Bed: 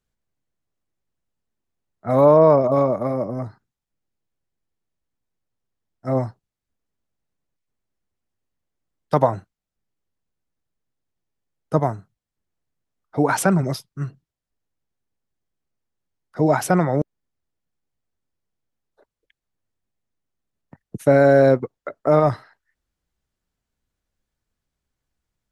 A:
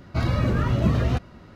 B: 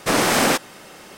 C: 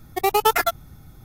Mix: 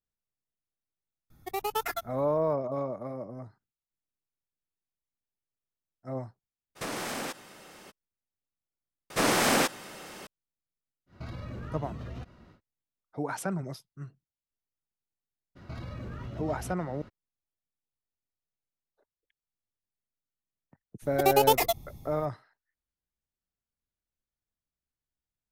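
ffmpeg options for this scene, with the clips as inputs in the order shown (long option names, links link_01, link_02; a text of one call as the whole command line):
ffmpeg -i bed.wav -i cue0.wav -i cue1.wav -i cue2.wav -filter_complex "[3:a]asplit=2[link_01][link_02];[2:a]asplit=2[link_03][link_04];[1:a]asplit=2[link_05][link_06];[0:a]volume=-14.5dB[link_07];[link_03]acompressor=threshold=-23dB:ratio=6:attack=3.2:release=140:knee=1:detection=peak[link_08];[link_04]acompressor=mode=upward:threshold=-24dB:ratio=1.5:attack=0.25:release=29:knee=2.83:detection=peak[link_09];[link_05]acompressor=threshold=-27dB:ratio=6:attack=3.2:release=140:knee=1:detection=peak[link_10];[link_06]acompressor=threshold=-33dB:ratio=6:attack=3.2:release=140:knee=1:detection=peak[link_11];[link_02]asuperstop=centerf=1500:order=4:qfactor=1.5[link_12];[link_07]asplit=2[link_13][link_14];[link_13]atrim=end=9.104[link_15];[link_09]atrim=end=1.17,asetpts=PTS-STARTPTS,volume=-6.5dB[link_16];[link_14]atrim=start=10.266[link_17];[link_01]atrim=end=1.24,asetpts=PTS-STARTPTS,volume=-13dB,afade=type=in:duration=0.004:curve=hsin,afade=type=out:start_time=1.236:duration=0.004:curve=hsin,adelay=1300[link_18];[link_08]atrim=end=1.17,asetpts=PTS-STARTPTS,volume=-8.5dB,afade=type=in:duration=0.02,afade=type=out:start_time=1.15:duration=0.02,adelay=6750[link_19];[link_10]atrim=end=1.55,asetpts=PTS-STARTPTS,volume=-9dB,afade=type=in:duration=0.1,afade=type=out:start_time=1.45:duration=0.1,adelay=487746S[link_20];[link_11]atrim=end=1.55,asetpts=PTS-STARTPTS,volume=-4dB,afade=type=in:duration=0.02,afade=type=out:start_time=1.53:duration=0.02,adelay=15550[link_21];[link_12]atrim=end=1.24,asetpts=PTS-STARTPTS,volume=-3dB,afade=type=in:duration=0.004:curve=hsin,afade=type=out:start_time=1.236:duration=0.004:curve=hsin,adelay=21020[link_22];[link_15][link_16]acrossfade=duration=0.004:curve1=hsin:curve2=hsin[link_23];[link_23][link_17]acrossfade=duration=0.004:curve1=hsin:curve2=hsin[link_24];[link_24][link_18][link_19][link_20][link_21][link_22]amix=inputs=6:normalize=0" out.wav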